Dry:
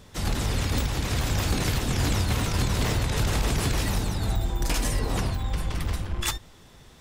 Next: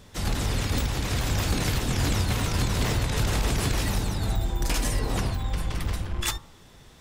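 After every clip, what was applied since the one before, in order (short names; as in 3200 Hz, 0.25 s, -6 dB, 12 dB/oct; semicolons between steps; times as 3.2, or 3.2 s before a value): de-hum 76.49 Hz, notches 18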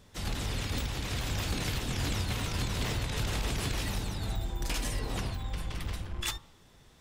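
dynamic EQ 3100 Hz, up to +4 dB, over -45 dBFS, Q 1.1; gain -7.5 dB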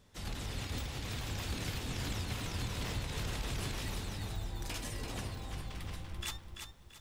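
lo-fi delay 0.338 s, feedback 35%, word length 10-bit, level -6.5 dB; gain -6.5 dB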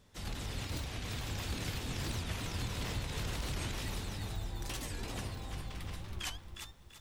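record warp 45 rpm, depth 250 cents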